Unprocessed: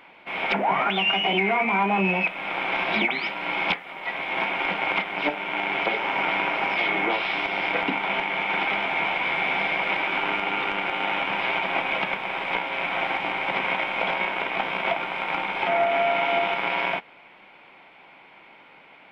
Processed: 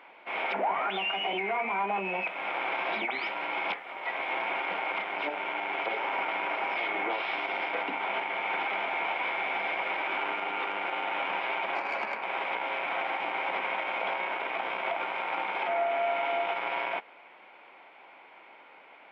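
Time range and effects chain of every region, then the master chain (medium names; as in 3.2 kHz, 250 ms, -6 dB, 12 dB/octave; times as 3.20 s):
11.75–12.23 s: steep low-pass 2.7 kHz + frequency shift +25 Hz + valve stage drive 18 dB, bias 0.45
whole clip: peak limiter -19 dBFS; high-pass 390 Hz 12 dB/octave; treble shelf 2.9 kHz -10.5 dB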